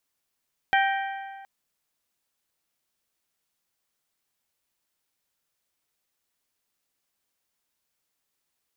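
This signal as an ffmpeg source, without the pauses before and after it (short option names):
-f lavfi -i "aevalsrc='0.112*pow(10,-3*t/1.8)*sin(2*PI*783*t)+0.0794*pow(10,-3*t/1.462)*sin(2*PI*1566*t)+0.0562*pow(10,-3*t/1.384)*sin(2*PI*1879.2*t)+0.0398*pow(10,-3*t/1.295)*sin(2*PI*2349*t)+0.0282*pow(10,-3*t/1.188)*sin(2*PI*3132*t)':d=0.72:s=44100"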